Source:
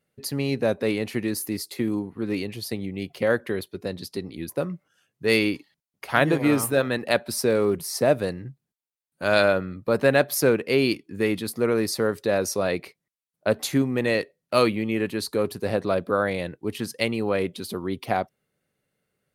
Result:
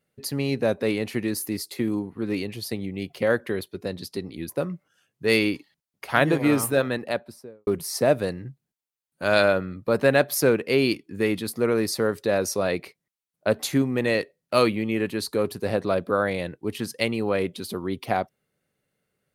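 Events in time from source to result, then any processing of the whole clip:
6.74–7.67 studio fade out

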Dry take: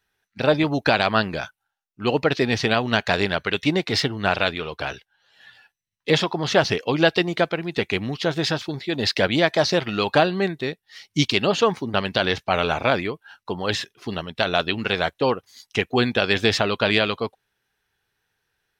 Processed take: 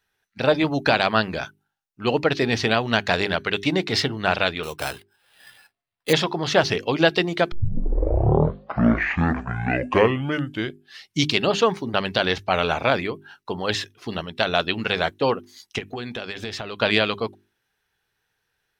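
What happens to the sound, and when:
4.63–6.13 sample-rate reducer 6700 Hz
7.52 tape start 3.66 s
15.78–16.82 compressor 8:1, threshold -27 dBFS
whole clip: notches 50/100/150/200/250/300/350/400 Hz

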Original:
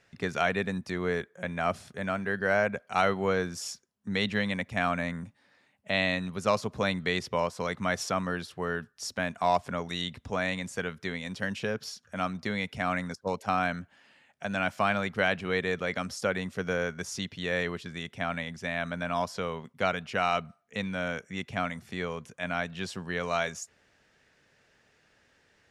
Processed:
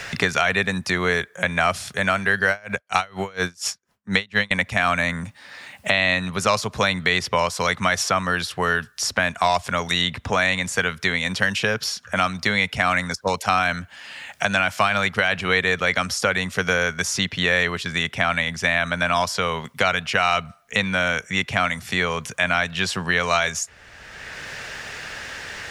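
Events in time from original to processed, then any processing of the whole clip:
2.49–4.51 dB-linear tremolo 4.2 Hz, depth 33 dB
whole clip: bell 280 Hz -11.5 dB 2.8 oct; maximiser +19 dB; three-band squash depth 70%; gain -4.5 dB

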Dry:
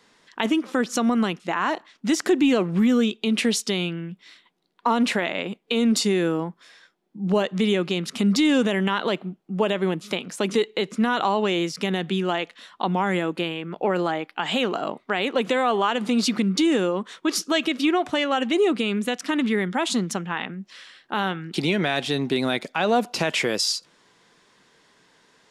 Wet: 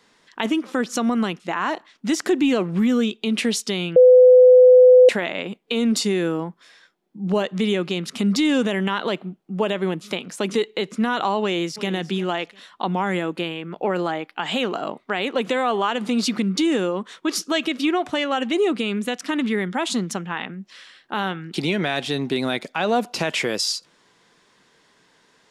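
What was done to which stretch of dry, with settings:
3.96–5.09 bleep 504 Hz -6.5 dBFS
11.41–11.9 echo throw 0.35 s, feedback 20%, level -15 dB

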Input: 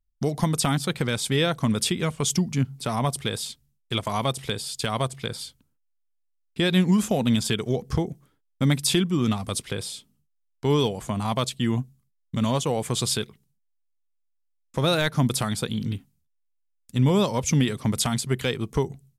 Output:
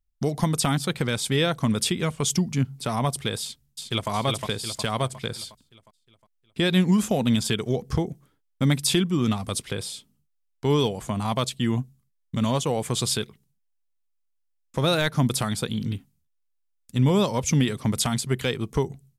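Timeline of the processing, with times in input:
3.41–4.1 echo throw 0.36 s, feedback 50%, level -3.5 dB

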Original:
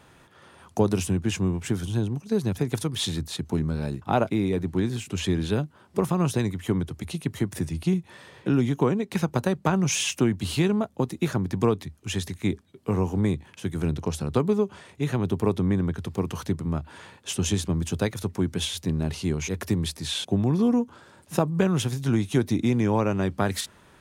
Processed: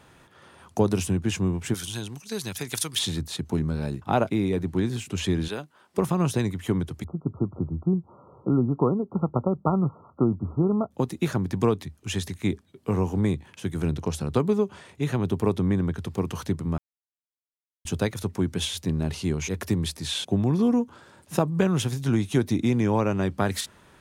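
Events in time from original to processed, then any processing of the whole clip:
1.74–2.99 tilt shelf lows -10 dB, about 1200 Hz
5.48–5.98 HPF 750 Hz 6 dB/oct
7.04–10.91 brick-wall FIR low-pass 1400 Hz
16.78–17.85 mute

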